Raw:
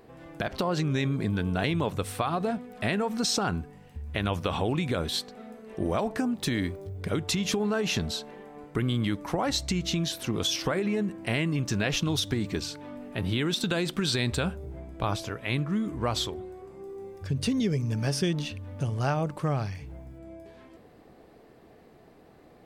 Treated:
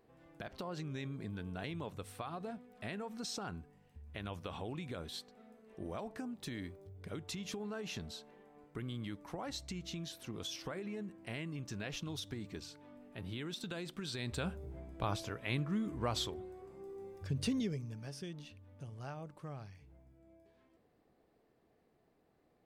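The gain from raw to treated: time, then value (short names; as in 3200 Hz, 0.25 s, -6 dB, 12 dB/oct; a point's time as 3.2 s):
14.13 s -15 dB
14.55 s -7.5 dB
17.54 s -7.5 dB
18.01 s -18.5 dB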